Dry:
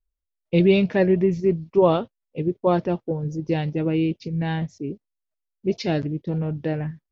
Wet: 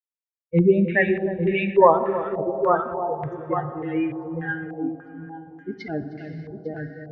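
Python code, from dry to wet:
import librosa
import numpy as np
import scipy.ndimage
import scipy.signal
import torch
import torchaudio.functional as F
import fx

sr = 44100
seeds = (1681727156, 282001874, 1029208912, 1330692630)

p1 = fx.bin_expand(x, sr, power=3.0)
p2 = p1 + fx.echo_multitap(p1, sr, ms=(311, 850), db=(-10.0, -7.5), dry=0)
p3 = fx.rev_plate(p2, sr, seeds[0], rt60_s=3.8, hf_ratio=0.9, predelay_ms=0, drr_db=7.5)
p4 = fx.filter_held_lowpass(p3, sr, hz=3.4, low_hz=720.0, high_hz=2300.0)
y = p4 * 10.0 ** (2.5 / 20.0)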